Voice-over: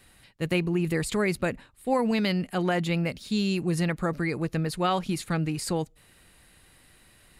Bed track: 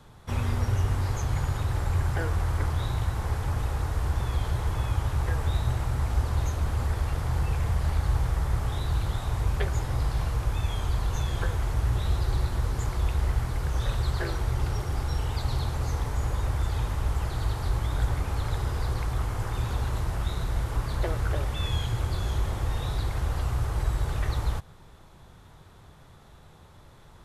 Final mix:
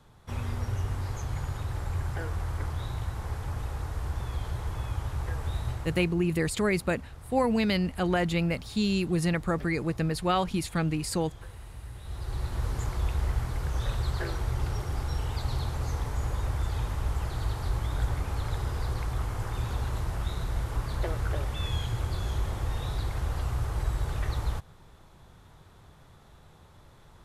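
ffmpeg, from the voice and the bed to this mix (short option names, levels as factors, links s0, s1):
-filter_complex "[0:a]adelay=5450,volume=0.944[s0];[1:a]volume=2.82,afade=t=out:st=5.67:d=0.49:silence=0.266073,afade=t=in:st=12.01:d=0.67:silence=0.188365[s1];[s0][s1]amix=inputs=2:normalize=0"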